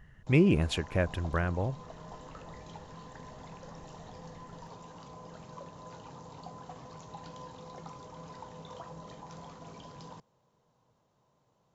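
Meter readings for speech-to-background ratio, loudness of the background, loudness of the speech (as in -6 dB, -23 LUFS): 19.0 dB, -48.0 LUFS, -29.0 LUFS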